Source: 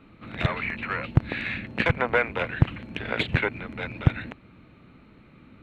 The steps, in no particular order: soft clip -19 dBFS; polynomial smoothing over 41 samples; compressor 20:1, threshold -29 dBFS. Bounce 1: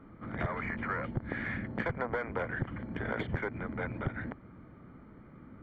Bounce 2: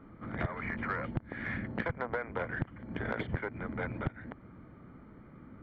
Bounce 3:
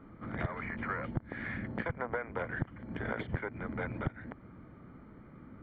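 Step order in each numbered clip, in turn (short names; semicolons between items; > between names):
soft clip > polynomial smoothing > compressor; polynomial smoothing > compressor > soft clip; compressor > soft clip > polynomial smoothing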